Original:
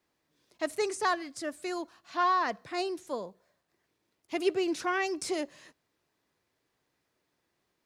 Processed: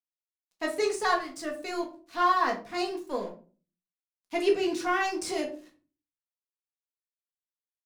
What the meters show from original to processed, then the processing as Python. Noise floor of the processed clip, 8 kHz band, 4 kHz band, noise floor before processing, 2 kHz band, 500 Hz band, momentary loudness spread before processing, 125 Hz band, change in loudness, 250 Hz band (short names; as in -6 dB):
under -85 dBFS, +1.0 dB, +2.5 dB, -79 dBFS, +3.0 dB, +3.0 dB, 11 LU, n/a, +2.5 dB, +2.0 dB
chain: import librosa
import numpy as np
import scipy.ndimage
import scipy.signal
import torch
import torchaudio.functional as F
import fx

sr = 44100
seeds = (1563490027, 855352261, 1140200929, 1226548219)

y = np.sign(x) * np.maximum(np.abs(x) - 10.0 ** (-52.0 / 20.0), 0.0)
y = fx.room_shoebox(y, sr, seeds[0], volume_m3=210.0, walls='furnished', distance_m=1.8)